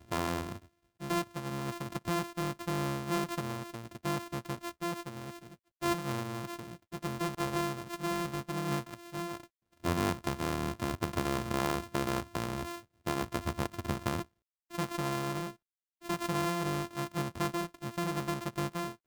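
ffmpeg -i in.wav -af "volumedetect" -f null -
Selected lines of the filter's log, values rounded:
mean_volume: -35.6 dB
max_volume: -18.3 dB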